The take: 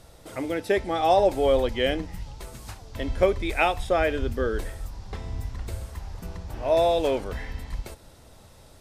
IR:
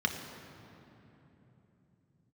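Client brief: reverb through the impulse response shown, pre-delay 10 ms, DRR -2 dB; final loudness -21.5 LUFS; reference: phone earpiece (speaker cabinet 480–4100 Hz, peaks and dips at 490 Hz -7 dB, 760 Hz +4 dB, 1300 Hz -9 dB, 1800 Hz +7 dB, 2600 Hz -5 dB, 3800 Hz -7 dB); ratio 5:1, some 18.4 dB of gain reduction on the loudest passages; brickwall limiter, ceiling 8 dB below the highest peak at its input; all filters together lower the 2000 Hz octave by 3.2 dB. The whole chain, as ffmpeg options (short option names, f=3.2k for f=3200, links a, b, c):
-filter_complex "[0:a]equalizer=f=2k:t=o:g=-4.5,acompressor=threshold=-37dB:ratio=5,alimiter=level_in=7.5dB:limit=-24dB:level=0:latency=1,volume=-7.5dB,asplit=2[a][b];[1:a]atrim=start_sample=2205,adelay=10[c];[b][c]afir=irnorm=-1:irlink=0,volume=-6dB[d];[a][d]amix=inputs=2:normalize=0,highpass=480,equalizer=f=490:t=q:w=4:g=-7,equalizer=f=760:t=q:w=4:g=4,equalizer=f=1.3k:t=q:w=4:g=-9,equalizer=f=1.8k:t=q:w=4:g=7,equalizer=f=2.6k:t=q:w=4:g=-5,equalizer=f=3.8k:t=q:w=4:g=-7,lowpass=f=4.1k:w=0.5412,lowpass=f=4.1k:w=1.3066,volume=22.5dB"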